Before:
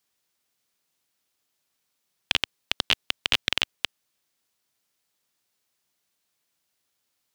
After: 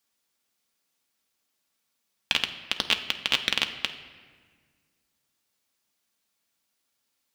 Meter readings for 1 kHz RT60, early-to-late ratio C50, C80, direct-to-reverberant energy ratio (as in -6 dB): 1.6 s, 11.0 dB, 12.5 dB, 5.0 dB